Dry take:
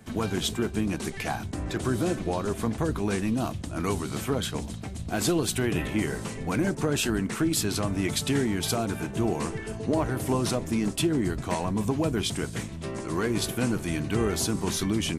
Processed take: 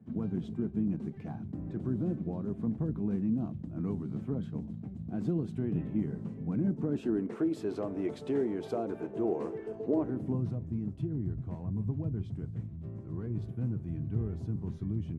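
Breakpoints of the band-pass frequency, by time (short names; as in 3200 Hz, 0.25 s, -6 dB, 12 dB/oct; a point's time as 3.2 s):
band-pass, Q 1.8
6.68 s 180 Hz
7.39 s 440 Hz
9.86 s 440 Hz
10.54 s 110 Hz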